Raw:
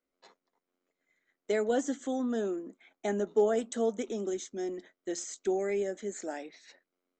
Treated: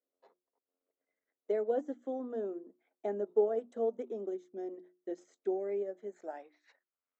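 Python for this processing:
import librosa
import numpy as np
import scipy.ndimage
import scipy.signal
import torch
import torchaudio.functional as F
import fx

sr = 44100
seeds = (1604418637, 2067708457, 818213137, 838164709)

y = fx.transient(x, sr, attack_db=2, sustain_db=-6)
y = fx.filter_sweep_bandpass(y, sr, from_hz=500.0, to_hz=1500.0, start_s=5.75, end_s=7.11, q=1.2)
y = fx.hum_notches(y, sr, base_hz=60, count=6)
y = y * librosa.db_to_amplitude(-2.5)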